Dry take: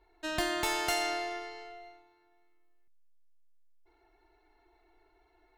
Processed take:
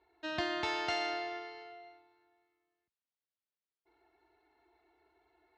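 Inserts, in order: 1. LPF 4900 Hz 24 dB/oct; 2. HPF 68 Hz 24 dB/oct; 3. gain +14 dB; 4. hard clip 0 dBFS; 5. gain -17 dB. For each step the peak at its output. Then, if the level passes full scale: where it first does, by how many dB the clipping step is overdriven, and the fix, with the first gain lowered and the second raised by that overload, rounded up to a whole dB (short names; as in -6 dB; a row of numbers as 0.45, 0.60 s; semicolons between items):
-18.5, -17.5, -3.5, -3.5, -20.5 dBFS; no overload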